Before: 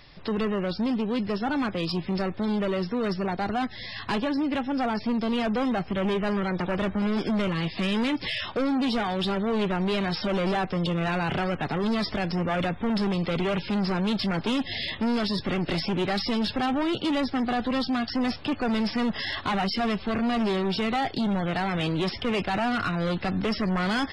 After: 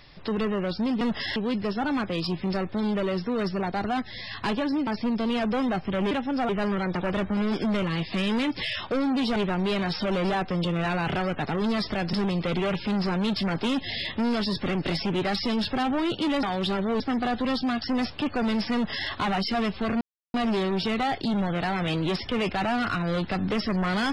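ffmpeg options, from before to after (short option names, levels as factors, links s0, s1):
-filter_complex "[0:a]asplit=11[s0][s1][s2][s3][s4][s5][s6][s7][s8][s9][s10];[s0]atrim=end=1.012[s11];[s1]atrim=start=18.998:end=19.352[s12];[s2]atrim=start=1.008:end=4.522[s13];[s3]atrim=start=4.898:end=6.142[s14];[s4]atrim=start=4.518:end=4.902[s15];[s5]atrim=start=6.138:end=9.012[s16];[s6]atrim=start=9.578:end=12.352[s17];[s7]atrim=start=12.958:end=17.262[s18];[s8]atrim=start=9.008:end=9.582[s19];[s9]atrim=start=17.258:end=20.27,asetpts=PTS-STARTPTS,afade=t=out:st=3.008:d=0.004:c=hsin,apad=pad_dur=0.33[s20];[s10]atrim=start=20.27,asetpts=PTS-STARTPTS,afade=t=in:d=0.004:c=hsin[s21];[s11][s12]acrossfade=d=0.004:c1=hsin:c2=hsin[s22];[s22][s13]acrossfade=d=0.004:c1=hsin:c2=hsin[s23];[s23][s14]acrossfade=d=0.004:c1=hsin:c2=hsin[s24];[s24][s15]acrossfade=d=0.004:c1=hsin:c2=hsin[s25];[s25][s16]acrossfade=d=0.004:c1=hsin:c2=hsin[s26];[s26][s17]acrossfade=d=0.004:c1=hsin:c2=hsin[s27];[s27][s18]acrossfade=d=0.004:c1=hsin:c2=hsin[s28];[s28][s19]acrossfade=d=0.004:c1=hsin:c2=hsin[s29];[s20][s21]concat=n=2:v=0:a=1[s30];[s29][s30]acrossfade=d=0.004:c1=hsin:c2=hsin"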